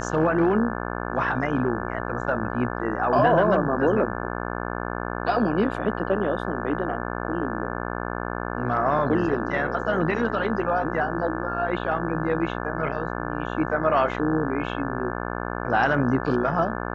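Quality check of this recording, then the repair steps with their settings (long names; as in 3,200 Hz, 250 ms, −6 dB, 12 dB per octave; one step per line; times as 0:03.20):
mains buzz 60 Hz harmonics 29 −30 dBFS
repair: hum removal 60 Hz, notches 29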